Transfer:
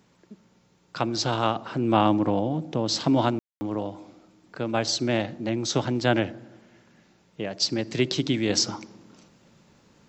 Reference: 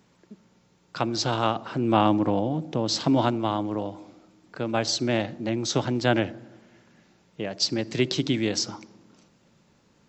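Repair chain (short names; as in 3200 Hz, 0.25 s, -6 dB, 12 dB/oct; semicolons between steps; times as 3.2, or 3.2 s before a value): room tone fill 3.39–3.61; gain 0 dB, from 8.49 s -4 dB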